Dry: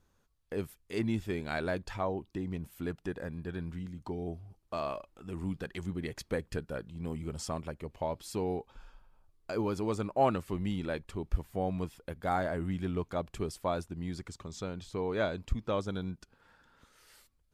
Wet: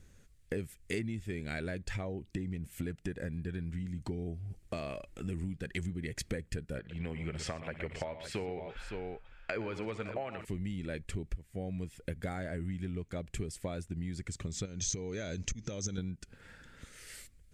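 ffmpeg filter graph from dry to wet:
-filter_complex "[0:a]asettb=1/sr,asplit=3[a][b][c];[a]atrim=end=6.794[d];[b]atrim=start=6.79:end=10.45,asetpts=PTS-STARTPTS,afade=t=in:d=0.004:c=qsin,afade=t=out:st=3.656:d=0.004:c=qsin,acrossover=split=580 3400:gain=0.178 1 0.0708[e][f][g];[e][f][g]amix=inputs=3:normalize=0,acontrast=54,aecho=1:1:61|62|118|561:0.158|0.106|0.237|0.251,atrim=end_sample=161406[h];[c]atrim=start=10.446[i];[d][h]acrossfade=d=0.004:c1=hsin:c2=qsin[j];[j][i]acrossfade=d=0.004:c1=qsin:c2=hsin,asettb=1/sr,asplit=3[k][l][m];[k]atrim=end=14.654[n];[l]atrim=start=14.65:end=15.98,asetpts=PTS-STARTPTS,afade=t=in:d=0.004:c=qsin,afade=t=out:st=1.326:d=0.004:c=qsin,bandreject=f=1.1k:w=16,acompressor=threshold=-41dB:ratio=12:attack=3.2:release=140:knee=1:detection=peak,lowpass=f=6.2k:t=q:w=14[o];[m]atrim=start=15.976[p];[n][o]acrossfade=d=0.004:c1=hsin:c2=qsin[q];[q][p]acrossfade=d=0.004:c1=qsin:c2=hsin,bass=f=250:g=9,treble=f=4k:g=-2,acompressor=threshold=-39dB:ratio=12,equalizer=f=500:t=o:w=1:g=4,equalizer=f=1k:t=o:w=1:g=-11,equalizer=f=2k:t=o:w=1:g=10,equalizer=f=8k:t=o:w=1:g=11,volume=5dB"

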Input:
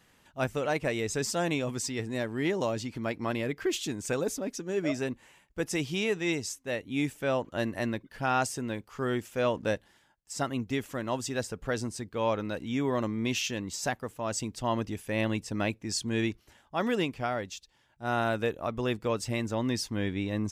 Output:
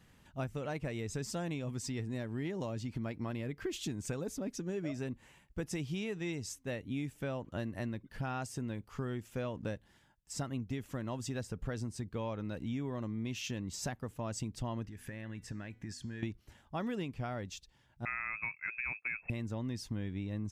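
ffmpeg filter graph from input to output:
-filter_complex "[0:a]asettb=1/sr,asplit=3[a][b][c];[a]atrim=end=14.844[d];[b]atrim=start=14.84:end=16.23,asetpts=PTS-STARTPTS,afade=t=in:d=0.004:c=qsin,afade=t=out:st=1.386:d=0.004:c=qsin,equalizer=f=1.7k:t=o:w=0.52:g=12,acompressor=threshold=-41dB:ratio=8:attack=3.2:release=140:knee=1:detection=peak,bandreject=f=247.6:t=h:w=4,bandreject=f=495.2:t=h:w=4,bandreject=f=742.8:t=h:w=4,bandreject=f=990.4:t=h:w=4,bandreject=f=1.238k:t=h:w=4,bandreject=f=1.4856k:t=h:w=4,bandreject=f=1.7332k:t=h:w=4,bandreject=f=1.9808k:t=h:w=4,bandreject=f=2.2284k:t=h:w=4,bandreject=f=2.476k:t=h:w=4,bandreject=f=2.7236k:t=h:w=4,bandreject=f=2.9712k:t=h:w=4,bandreject=f=3.2188k:t=h:w=4,bandreject=f=3.4664k:t=h:w=4,bandreject=f=3.714k:t=h:w=4,bandreject=f=3.9616k:t=h:w=4,bandreject=f=4.2092k:t=h:w=4,bandreject=f=4.4568k:t=h:w=4,bandreject=f=4.7044k:t=h:w=4,bandreject=f=4.952k:t=h:w=4,bandreject=f=5.1996k:t=h:w=4,bandreject=f=5.4472k:t=h:w=4,bandreject=f=5.6948k:t=h:w=4,bandreject=f=5.9424k:t=h:w=4,bandreject=f=6.19k:t=h:w=4,bandreject=f=6.4376k:t=h:w=4,bandreject=f=6.6852k:t=h:w=4,bandreject=f=6.9328k:t=h:w=4,bandreject=f=7.1804k:t=h:w=4,bandreject=f=7.428k:t=h:w=4,bandreject=f=7.6756k:t=h:w=4,bandreject=f=7.9232k:t=h:w=4[e];[c]atrim=start=16.226[f];[d][e]acrossfade=d=0.004:c1=hsin:c2=qsin[g];[g][f]acrossfade=d=0.004:c1=qsin:c2=hsin,asettb=1/sr,asplit=3[h][i][j];[h]atrim=end=18.054[k];[i]atrim=start=18.05:end=19.3,asetpts=PTS-STARTPTS,afade=t=in:d=0.004:c=qsin,afade=t=out:st=1.246:d=0.004:c=qsin,agate=range=-33dB:threshold=-37dB:ratio=3:release=100:detection=peak,lowpass=f=2.3k:t=q:w=0.5098,lowpass=f=2.3k:t=q:w=0.6013,lowpass=f=2.3k:t=q:w=0.9,lowpass=f=2.3k:t=q:w=2.563,afreqshift=-2700[l];[j]atrim=start=19.296[m];[k][l]acrossfade=d=0.004:c1=hsin:c2=qsin[n];[n][m]acrossfade=d=0.004:c1=qsin:c2=hsin,bass=f=250:g=10,treble=f=4k:g=-1,acompressor=threshold=-31dB:ratio=6,volume=-3.5dB"

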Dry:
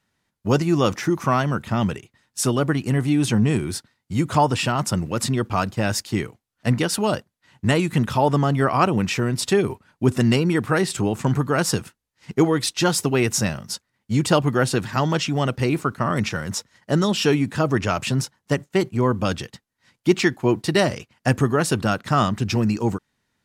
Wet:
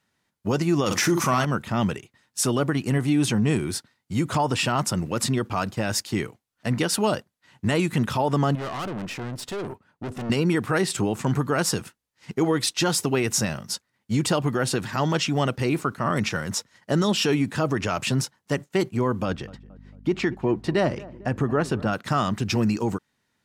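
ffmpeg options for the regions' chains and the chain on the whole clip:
-filter_complex "[0:a]asettb=1/sr,asplit=3[a][b][c];[a]atrim=end=0.864[d];[b]atrim=start=0.86:end=1.45,asetpts=PTS-STARTPTS,afade=t=in:d=0.004:c=qsin,afade=t=out:st=0.586:d=0.004:c=qsin,asplit=2[e][f];[f]adelay=47,volume=-9.5dB[g];[e][g]amix=inputs=2:normalize=0,atrim=end_sample=26019,acontrast=43,equalizer=f=9.7k:w=0.3:g=7.5[h];[c]atrim=start=1.446[i];[d][h]acrossfade=d=0.004:c1=hsin:c2=qsin[j];[j][i]acrossfade=d=0.004:c1=qsin:c2=hsin,asettb=1/sr,asplit=3[k][l][m];[k]atrim=end=8.554[n];[l]atrim=start=8.55:end=10.3,asetpts=PTS-STARTPTS,afade=t=in:d=0.004:c=qsin,afade=t=out:st=1.746:d=0.004:c=qsin,highshelf=f=2.6k:g=-8.5,aeval=exprs='(tanh(25.1*val(0)+0.6)-tanh(0.6))/25.1':c=same,bandreject=f=2.3k:w=25[o];[m]atrim=start=10.296[p];[n][o]acrossfade=d=0.004:c1=hsin:c2=qsin[q];[q][p]acrossfade=d=0.004:c1=qsin:c2=hsin,asettb=1/sr,asplit=3[r][s][t];[r]atrim=end=19.254[u];[s]atrim=start=19.25:end=21.93,asetpts=PTS-STARTPTS,afade=t=in:d=0.004:c=qsin,afade=t=out:st=2.676:d=0.004:c=qsin,lowpass=f=1.6k:p=1,aeval=exprs='val(0)+0.00891*(sin(2*PI*50*n/s)+sin(2*PI*2*50*n/s)/2+sin(2*PI*3*50*n/s)/3+sin(2*PI*4*50*n/s)/4+sin(2*PI*5*50*n/s)/5)':c=same,asplit=2[v][w];[w]adelay=224,lowpass=f=1.1k:p=1,volume=-20dB,asplit=2[x][y];[y]adelay=224,lowpass=f=1.1k:p=1,volume=0.54,asplit=2[z][aa];[aa]adelay=224,lowpass=f=1.1k:p=1,volume=0.54,asplit=2[ab][ac];[ac]adelay=224,lowpass=f=1.1k:p=1,volume=0.54[ad];[v][x][z][ab][ad]amix=inputs=5:normalize=0,atrim=end_sample=118188[ae];[t]atrim=start=21.926[af];[u][ae]acrossfade=d=0.004:c1=hsin:c2=qsin[ag];[ag][af]acrossfade=d=0.004:c1=qsin:c2=hsin,alimiter=limit=-12.5dB:level=0:latency=1:release=53,lowshelf=f=78:g=-8.5"

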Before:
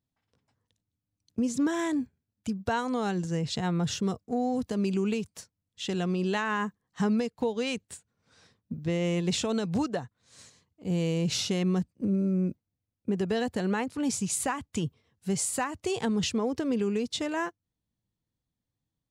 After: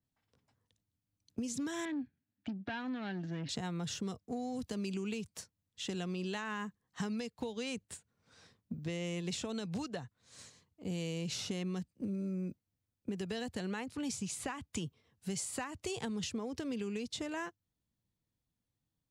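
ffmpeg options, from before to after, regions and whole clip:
-filter_complex "[0:a]asettb=1/sr,asplit=3[a][b][c];[a]atrim=end=1.854[d];[b]atrim=start=1.85:end=3.49,asetpts=PTS-STARTPTS,afade=t=in:d=0.004:c=qsin,afade=t=out:st=1.636:d=0.004:c=qsin,aeval=exprs='(tanh(28.2*val(0)+0.3)-tanh(0.3))/28.2':c=same,highpass=120,equalizer=f=280:t=q:w=4:g=9,equalizer=f=450:t=q:w=4:g=-8,equalizer=f=1.1k:t=q:w=4:g=-5,equalizer=f=1.7k:t=q:w=4:g=7,lowpass=f=3.9k:w=0.5412,lowpass=f=3.9k:w=1.3066[e];[c]atrim=start=3.486[f];[d][e]acrossfade=d=0.004:c1=hsin:c2=qsin[g];[g][f]acrossfade=d=0.004:c1=qsin:c2=hsin,acrossover=split=160|2100|5600[h][i][j][k];[h]acompressor=threshold=-46dB:ratio=4[l];[i]acompressor=threshold=-38dB:ratio=4[m];[j]acompressor=threshold=-44dB:ratio=4[n];[k]acompressor=threshold=-39dB:ratio=4[o];[l][m][n][o]amix=inputs=4:normalize=0,adynamicequalizer=threshold=0.002:dfrequency=5000:dqfactor=0.7:tfrequency=5000:tqfactor=0.7:attack=5:release=100:ratio=0.375:range=2.5:mode=cutabove:tftype=highshelf,volume=-1.5dB"

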